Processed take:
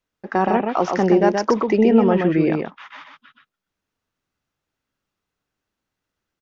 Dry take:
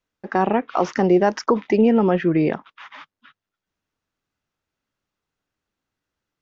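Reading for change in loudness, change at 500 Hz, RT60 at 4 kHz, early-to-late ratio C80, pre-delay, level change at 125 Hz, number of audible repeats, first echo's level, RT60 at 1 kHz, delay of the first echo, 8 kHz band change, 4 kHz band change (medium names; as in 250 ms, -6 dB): +1.0 dB, +1.5 dB, no reverb, no reverb, no reverb, +1.0 dB, 1, -4.5 dB, no reverb, 125 ms, no reading, +1.5 dB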